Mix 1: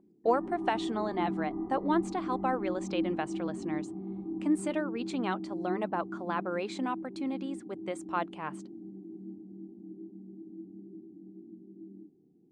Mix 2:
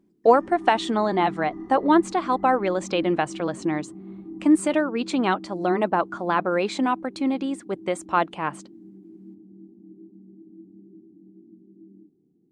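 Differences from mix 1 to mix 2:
speech +10.5 dB; background: remove synth low-pass 810 Hz, resonance Q 1.8

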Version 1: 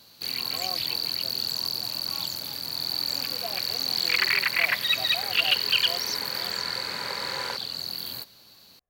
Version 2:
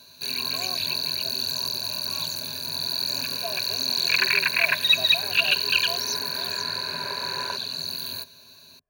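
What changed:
second sound: add air absorption 380 m; master: add ripple EQ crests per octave 1.5, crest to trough 14 dB

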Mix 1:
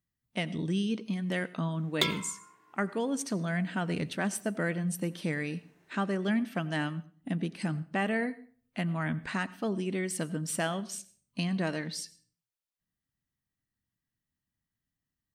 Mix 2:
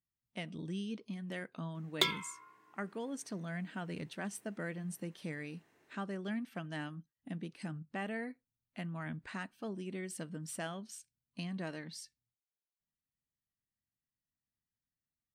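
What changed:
speech -8.0 dB; reverb: off

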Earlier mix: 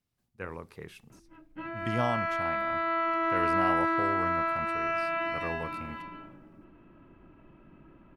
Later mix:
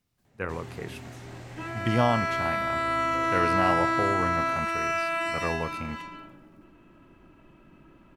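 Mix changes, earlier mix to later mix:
speech +6.5 dB; first sound: unmuted; second sound: remove air absorption 350 m

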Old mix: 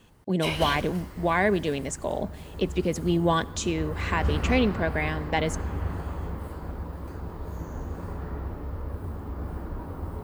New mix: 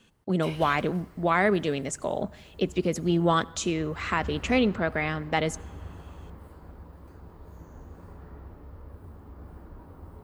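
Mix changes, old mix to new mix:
speech: remove Butterworth band-stop 1300 Hz, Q 6.2; background -11.0 dB

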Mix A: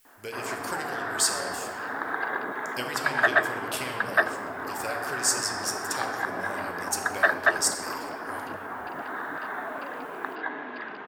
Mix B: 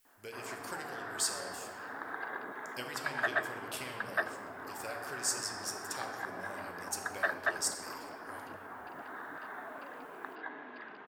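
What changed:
speech -8.5 dB; background -10.5 dB

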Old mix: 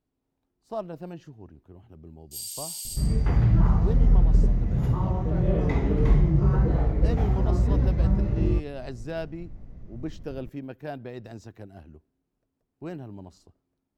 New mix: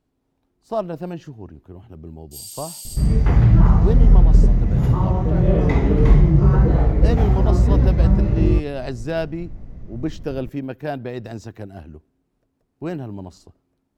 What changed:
speech +9.0 dB; second sound +7.0 dB

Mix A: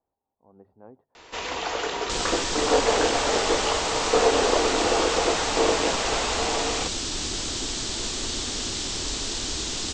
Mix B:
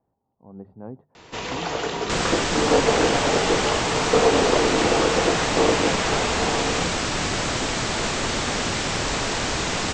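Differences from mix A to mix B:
speech +6.0 dB; second sound: add band shelf 1100 Hz +12.5 dB 2.7 oct; master: add bell 150 Hz +13.5 dB 1.5 oct

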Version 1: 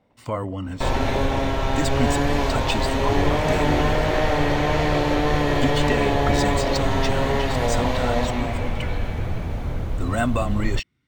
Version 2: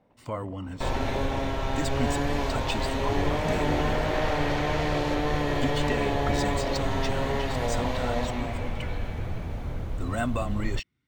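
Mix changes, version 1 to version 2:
speech -6.0 dB; second sound -6.0 dB

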